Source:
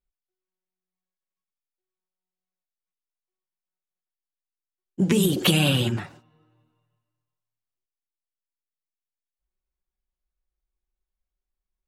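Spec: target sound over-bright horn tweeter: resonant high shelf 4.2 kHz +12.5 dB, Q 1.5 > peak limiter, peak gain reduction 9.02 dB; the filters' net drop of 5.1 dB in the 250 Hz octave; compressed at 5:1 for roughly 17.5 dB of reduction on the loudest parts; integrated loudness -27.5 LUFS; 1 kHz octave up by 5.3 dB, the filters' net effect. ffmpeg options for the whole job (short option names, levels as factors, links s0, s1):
-af "equalizer=f=250:t=o:g=-8.5,equalizer=f=1000:t=o:g=8.5,acompressor=threshold=0.0158:ratio=5,highshelf=f=4200:t=q:w=1.5:g=12.5,volume=2.82,alimiter=limit=0.178:level=0:latency=1"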